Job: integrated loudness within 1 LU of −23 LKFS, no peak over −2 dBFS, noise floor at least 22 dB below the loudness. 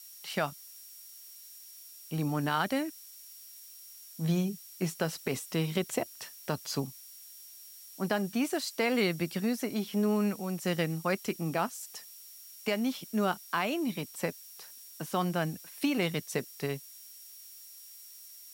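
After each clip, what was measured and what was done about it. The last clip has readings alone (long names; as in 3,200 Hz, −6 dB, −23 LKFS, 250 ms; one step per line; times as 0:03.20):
interfering tone 5,600 Hz; level of the tone −55 dBFS; background noise floor −51 dBFS; target noise floor −55 dBFS; integrated loudness −32.5 LKFS; sample peak −16.0 dBFS; target loudness −23.0 LKFS
→ notch filter 5,600 Hz, Q 30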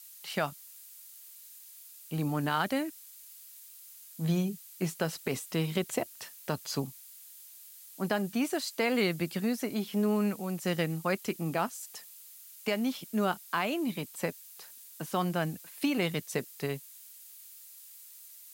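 interfering tone none found; background noise floor −52 dBFS; target noise floor −55 dBFS
→ noise reduction from a noise print 6 dB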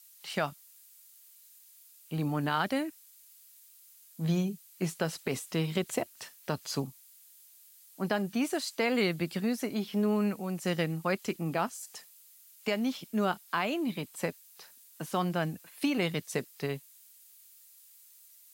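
background noise floor −58 dBFS; integrated loudness −32.5 LKFS; sample peak −16.0 dBFS; target loudness −23.0 LKFS
→ level +9.5 dB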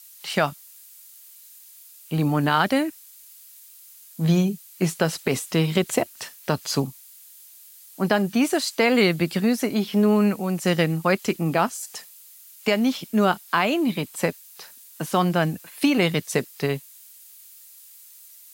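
integrated loudness −23.0 LKFS; sample peak −6.5 dBFS; background noise floor −48 dBFS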